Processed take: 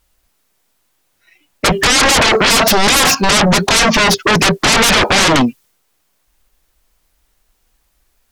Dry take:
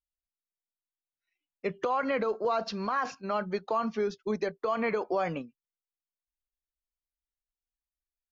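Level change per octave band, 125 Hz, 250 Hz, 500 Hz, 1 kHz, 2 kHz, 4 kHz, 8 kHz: +24.5 dB, +19.5 dB, +13.5 dB, +17.0 dB, +26.0 dB, +34.5 dB, no reading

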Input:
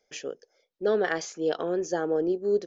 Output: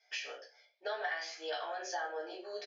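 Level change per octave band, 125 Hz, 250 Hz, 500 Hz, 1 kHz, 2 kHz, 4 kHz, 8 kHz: under -40 dB, -25.0 dB, -15.5 dB, -4.0 dB, -3.5 dB, -0.5 dB, no reading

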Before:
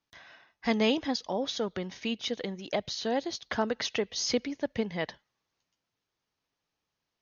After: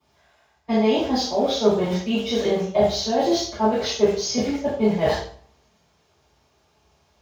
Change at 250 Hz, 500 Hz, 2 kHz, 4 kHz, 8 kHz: +9.5 dB, +11.5 dB, +2.5 dB, +6.0 dB, no reading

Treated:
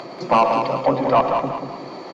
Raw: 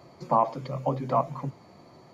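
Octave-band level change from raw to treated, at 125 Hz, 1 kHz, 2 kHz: +1.0 dB, +9.0 dB, +20.0 dB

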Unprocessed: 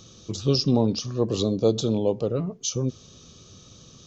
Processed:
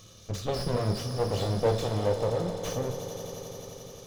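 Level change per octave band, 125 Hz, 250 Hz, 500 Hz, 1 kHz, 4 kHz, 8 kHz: -3.0 dB, -10.0 dB, -3.0 dB, +3.0 dB, -7.5 dB, no reading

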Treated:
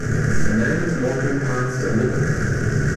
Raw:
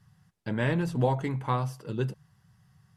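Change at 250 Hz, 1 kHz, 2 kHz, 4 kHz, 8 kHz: +12.0 dB, +3.0 dB, +15.5 dB, +7.0 dB, +21.0 dB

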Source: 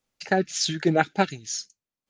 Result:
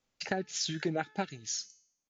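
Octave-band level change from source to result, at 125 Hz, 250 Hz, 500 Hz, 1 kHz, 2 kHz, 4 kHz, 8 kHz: -10.5 dB, -10.5 dB, -11.0 dB, -12.0 dB, -10.5 dB, -7.0 dB, -5.5 dB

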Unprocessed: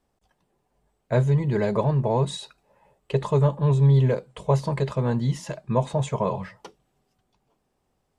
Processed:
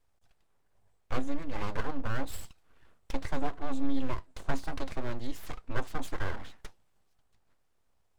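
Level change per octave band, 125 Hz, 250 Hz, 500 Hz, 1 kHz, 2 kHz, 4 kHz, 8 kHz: -21.0 dB, -9.5 dB, -16.0 dB, -9.0 dB, -1.5 dB, -8.0 dB, no reading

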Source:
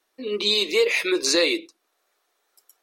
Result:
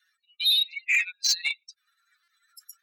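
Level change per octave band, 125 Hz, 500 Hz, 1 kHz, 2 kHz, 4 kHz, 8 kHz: no reading, under -40 dB, under -15 dB, -1.0 dB, -0.5 dB, -2.0 dB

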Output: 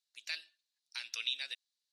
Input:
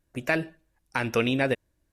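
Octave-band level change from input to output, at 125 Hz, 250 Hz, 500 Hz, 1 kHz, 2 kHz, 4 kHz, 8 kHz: under -40 dB, under -40 dB, under -40 dB, -28.5 dB, -14.0 dB, 0.0 dB, -3.5 dB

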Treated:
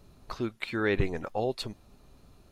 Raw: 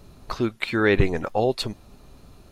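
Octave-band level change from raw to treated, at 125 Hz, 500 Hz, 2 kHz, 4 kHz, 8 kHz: -8.0 dB, -8.0 dB, -8.0 dB, -8.0 dB, -8.0 dB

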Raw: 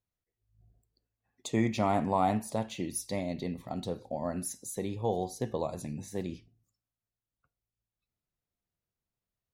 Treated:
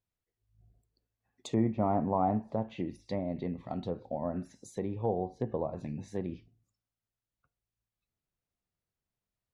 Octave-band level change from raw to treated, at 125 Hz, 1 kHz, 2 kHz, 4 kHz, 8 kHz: 0.0 dB, -2.0 dB, -10.0 dB, -8.5 dB, -15.5 dB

